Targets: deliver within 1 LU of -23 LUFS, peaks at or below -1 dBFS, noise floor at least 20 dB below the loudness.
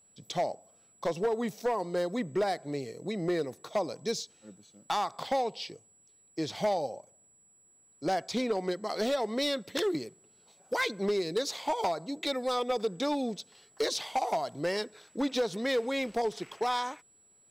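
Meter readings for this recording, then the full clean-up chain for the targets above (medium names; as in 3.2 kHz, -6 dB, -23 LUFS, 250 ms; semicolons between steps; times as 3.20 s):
clipped samples 1.5%; clipping level -23.0 dBFS; steady tone 7.8 kHz; tone level -61 dBFS; loudness -32.0 LUFS; peak level -23.0 dBFS; loudness target -23.0 LUFS
-> clip repair -23 dBFS; band-stop 7.8 kHz, Q 30; trim +9 dB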